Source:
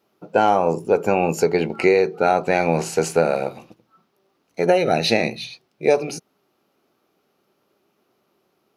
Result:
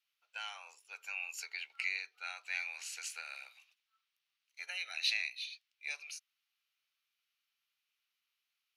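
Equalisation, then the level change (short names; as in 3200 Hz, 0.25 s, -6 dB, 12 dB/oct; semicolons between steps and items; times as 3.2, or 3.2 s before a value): ladder high-pass 2000 Hz, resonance 25%; high shelf 3700 Hz -7 dB; notch 5000 Hz, Q 28; -1.5 dB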